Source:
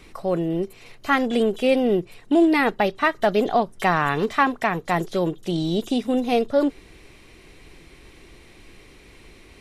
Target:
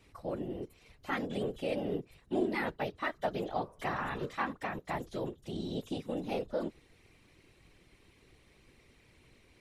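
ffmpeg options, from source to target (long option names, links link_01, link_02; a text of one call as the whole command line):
ffmpeg -i in.wav -filter_complex "[0:a]asettb=1/sr,asplit=3[link_01][link_02][link_03];[link_01]atrim=end=3.374[link_04];[link_02]atrim=start=3.37:end=4.53,asetpts=PTS-STARTPTS,afade=type=in:duration=0.004:curve=qsin,afade=type=out:start_time=1.156:duration=0.004:curve=qsin,bandreject=frequency=159.1:width_type=h:width=4,bandreject=frequency=318.2:width_type=h:width=4,bandreject=frequency=477.3:width_type=h:width=4,bandreject=frequency=636.4:width_type=h:width=4,bandreject=frequency=795.5:width_type=h:width=4,bandreject=frequency=954.6:width_type=h:width=4,bandreject=frequency=1113.7:width_type=h:width=4,bandreject=frequency=1272.8:width_type=h:width=4,bandreject=frequency=1431.9:width_type=h:width=4,bandreject=frequency=1591:width_type=h:width=4,bandreject=frequency=1750.1:width_type=h:width=4,bandreject=frequency=1909.2:width_type=h:width=4,bandreject=frequency=2068.3:width_type=h:width=4,bandreject=frequency=2227.4:width_type=h:width=4,bandreject=frequency=2386.5:width_type=h:width=4,bandreject=frequency=2545.6:width_type=h:width=4[link_05];[link_03]atrim=start=4.526[link_06];[link_04][link_05]acrossfade=duration=0.004:curve1=hsin:curve2=qsin[link_07];[link_07][link_06]acrossfade=duration=0.004:curve1=qsin:curve2=hsin,afftfilt=real='hypot(re,im)*cos(2*PI*random(0))':imag='hypot(re,im)*sin(2*PI*random(1))':win_size=512:overlap=0.75,volume=-8.5dB" out.wav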